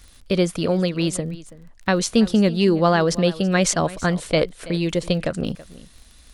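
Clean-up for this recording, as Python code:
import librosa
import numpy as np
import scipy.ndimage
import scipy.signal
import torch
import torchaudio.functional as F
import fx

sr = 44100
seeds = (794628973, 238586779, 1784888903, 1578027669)

y = fx.fix_declick_ar(x, sr, threshold=6.5)
y = fx.fix_echo_inverse(y, sr, delay_ms=329, level_db=-18.5)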